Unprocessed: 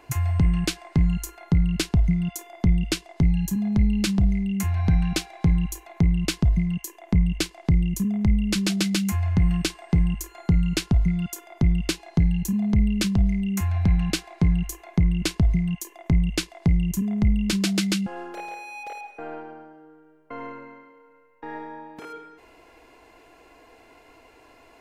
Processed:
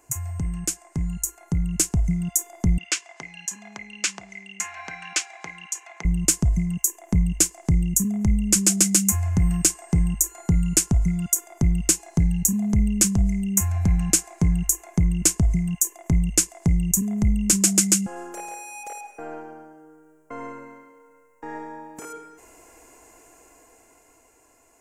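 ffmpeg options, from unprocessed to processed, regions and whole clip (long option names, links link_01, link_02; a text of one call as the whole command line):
ffmpeg -i in.wav -filter_complex "[0:a]asettb=1/sr,asplit=3[link_01][link_02][link_03];[link_01]atrim=end=2.784[link_04];[link_02]atrim=start=2.78:end=6.05,asetpts=PTS-STARTPTS,afade=type=in:duration=0.004:curve=qsin,afade=type=out:start_time=3.266:duration=0.004:curve=qsin,highpass=750,lowpass=4500,equalizer=frequency=2500:width=0.6:gain=9[link_05];[link_03]atrim=start=6.046[link_06];[link_04][link_05]acrossfade=duration=0.004:curve1=hsin:curve2=qsin[link_07];[link_07][link_06]acrossfade=duration=0.004:curve1=qsin:curve2=hsin,dynaudnorm=framelen=300:gausssize=11:maxgain=9dB,highshelf=frequency=5300:width_type=q:width=3:gain=11.5,volume=-8dB" out.wav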